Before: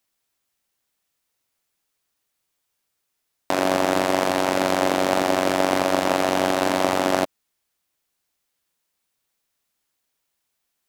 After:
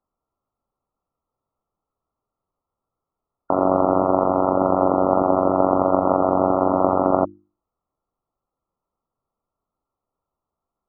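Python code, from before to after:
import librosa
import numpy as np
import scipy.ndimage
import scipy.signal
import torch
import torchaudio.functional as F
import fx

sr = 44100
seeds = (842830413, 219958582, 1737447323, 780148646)

y = fx.brickwall_lowpass(x, sr, high_hz=1400.0)
y = fx.low_shelf(y, sr, hz=83.0, db=8.0)
y = fx.hum_notches(y, sr, base_hz=50, count=7)
y = F.gain(torch.from_numpy(y), 3.0).numpy()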